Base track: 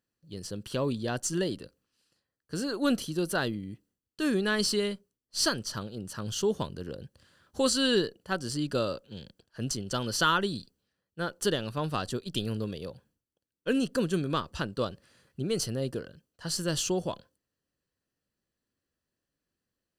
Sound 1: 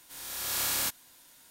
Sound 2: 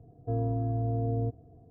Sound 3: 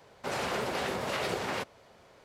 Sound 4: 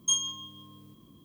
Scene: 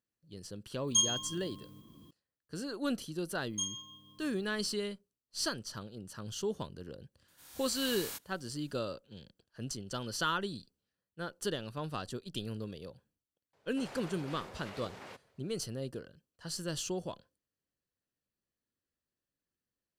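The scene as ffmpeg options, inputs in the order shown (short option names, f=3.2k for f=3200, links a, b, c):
-filter_complex "[4:a]asplit=2[a][b];[0:a]volume=-7.5dB[c];[a]atrim=end=1.24,asetpts=PTS-STARTPTS,volume=-1dB,afade=t=in:d=0.004:c=hsin,afade=t=out:st=1.236:d=0.004:c=hsin,adelay=870[d];[b]atrim=end=1.24,asetpts=PTS-STARTPTS,volume=-10dB,afade=t=in:d=0.004:c=hsin,afade=t=out:st=1.236:d=0.004:c=hsin,adelay=3500[e];[1:a]atrim=end=1.5,asetpts=PTS-STARTPTS,volume=-12.5dB,afade=t=in:d=0.004:c=hsin,afade=t=out:st=1.496:d=0.004:c=hsin,adelay=7280[f];[3:a]atrim=end=2.24,asetpts=PTS-STARTPTS,volume=-15.5dB,afade=t=in:d=0.004:c=hsin,afade=t=out:st=2.236:d=0.004:c=hsin,adelay=13530[g];[c][d][e][f][g]amix=inputs=5:normalize=0"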